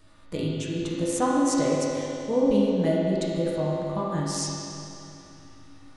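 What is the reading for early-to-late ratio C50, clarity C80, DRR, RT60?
-3.0 dB, -1.5 dB, -7.0 dB, 2.9 s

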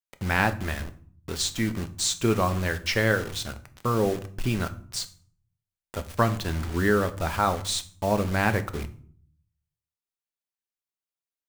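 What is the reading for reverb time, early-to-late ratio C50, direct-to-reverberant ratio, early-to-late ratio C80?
0.50 s, 16.5 dB, 8.5 dB, 20.0 dB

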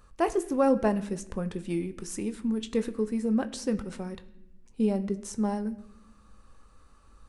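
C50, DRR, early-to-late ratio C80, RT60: 16.5 dB, 10.0 dB, 18.5 dB, 0.80 s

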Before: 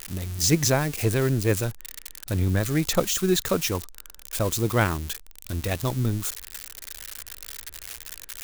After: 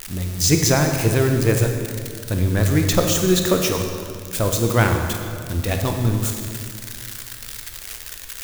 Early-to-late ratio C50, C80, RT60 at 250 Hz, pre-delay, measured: 4.5 dB, 6.0 dB, 2.7 s, 24 ms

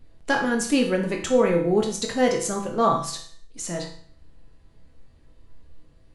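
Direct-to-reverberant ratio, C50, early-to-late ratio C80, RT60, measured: 1.0 dB, 7.5 dB, 11.5 dB, 0.55 s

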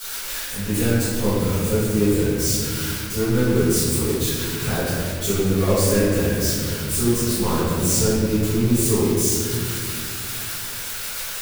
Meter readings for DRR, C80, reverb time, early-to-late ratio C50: -17.0 dB, -1.0 dB, 2.2 s, -4.0 dB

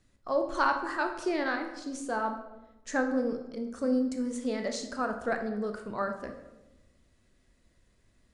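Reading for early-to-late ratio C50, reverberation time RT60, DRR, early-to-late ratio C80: 8.0 dB, 1.0 s, 5.0 dB, 10.5 dB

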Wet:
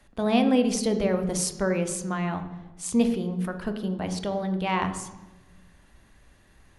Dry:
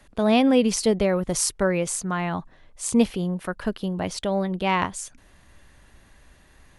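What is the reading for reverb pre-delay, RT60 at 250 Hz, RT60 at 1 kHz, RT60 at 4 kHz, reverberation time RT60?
3 ms, 1.6 s, 1.0 s, 0.80 s, 1.1 s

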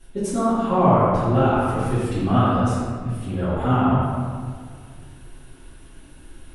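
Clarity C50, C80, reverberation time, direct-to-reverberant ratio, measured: -4.0 dB, -1.5 dB, 1.9 s, -16.0 dB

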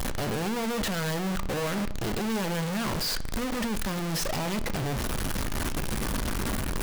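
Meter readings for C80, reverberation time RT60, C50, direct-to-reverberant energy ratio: 19.0 dB, 0.60 s, 16.0 dB, 11.0 dB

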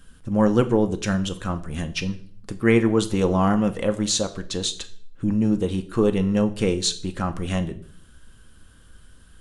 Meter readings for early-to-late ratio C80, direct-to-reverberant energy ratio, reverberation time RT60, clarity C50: 19.0 dB, 8.0 dB, 0.50 s, 16.0 dB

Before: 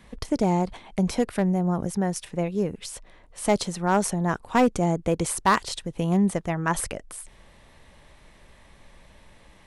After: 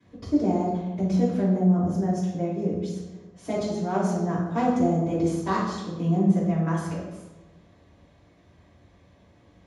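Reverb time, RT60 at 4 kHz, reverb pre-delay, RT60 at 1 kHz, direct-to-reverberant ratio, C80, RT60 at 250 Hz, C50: 1.2 s, 0.80 s, 3 ms, 1.0 s, -16.0 dB, 3.5 dB, 1.4 s, 0.5 dB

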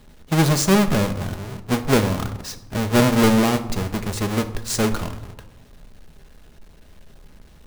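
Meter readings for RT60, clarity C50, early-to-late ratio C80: 1.0 s, 12.5 dB, 15.5 dB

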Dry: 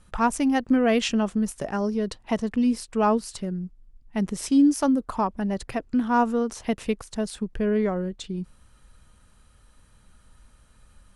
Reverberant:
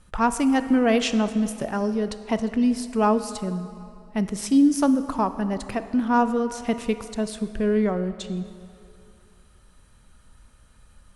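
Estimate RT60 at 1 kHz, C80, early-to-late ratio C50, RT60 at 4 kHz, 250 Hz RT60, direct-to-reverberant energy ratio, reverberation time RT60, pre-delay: 2.7 s, 13.0 dB, 12.0 dB, 1.9 s, 2.4 s, 11.0 dB, 2.7 s, 19 ms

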